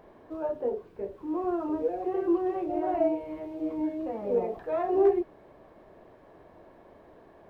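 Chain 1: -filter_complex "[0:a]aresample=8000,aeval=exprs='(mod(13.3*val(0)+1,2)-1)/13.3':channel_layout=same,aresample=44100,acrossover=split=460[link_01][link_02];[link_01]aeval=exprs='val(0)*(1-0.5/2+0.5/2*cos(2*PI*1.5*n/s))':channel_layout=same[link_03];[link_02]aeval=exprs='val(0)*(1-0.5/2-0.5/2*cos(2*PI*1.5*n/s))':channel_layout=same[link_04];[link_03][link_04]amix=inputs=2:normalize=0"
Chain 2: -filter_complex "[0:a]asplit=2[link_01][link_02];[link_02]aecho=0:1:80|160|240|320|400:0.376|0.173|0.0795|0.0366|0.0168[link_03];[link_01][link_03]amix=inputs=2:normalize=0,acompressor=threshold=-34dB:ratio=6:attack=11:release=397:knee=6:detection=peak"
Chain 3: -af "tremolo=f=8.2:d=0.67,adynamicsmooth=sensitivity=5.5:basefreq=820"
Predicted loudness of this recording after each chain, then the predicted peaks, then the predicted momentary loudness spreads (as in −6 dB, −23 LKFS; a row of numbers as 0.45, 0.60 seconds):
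−32.5, −38.5, −32.5 LKFS; −16.5, −26.0, −15.5 dBFS; 10, 16, 11 LU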